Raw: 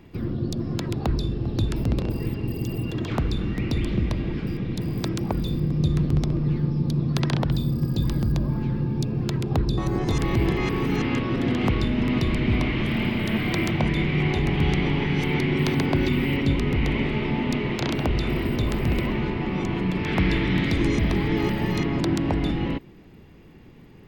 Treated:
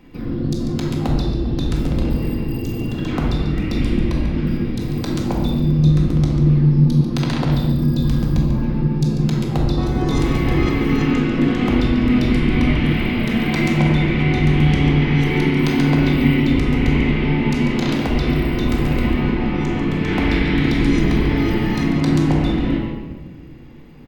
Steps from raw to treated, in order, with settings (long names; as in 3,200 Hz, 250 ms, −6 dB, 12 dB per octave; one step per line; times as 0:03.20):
parametric band 100 Hz −6 dB 0.65 octaves
on a send: single-tap delay 143 ms −10 dB
on the sum: rectangular room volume 800 cubic metres, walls mixed, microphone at 2 metres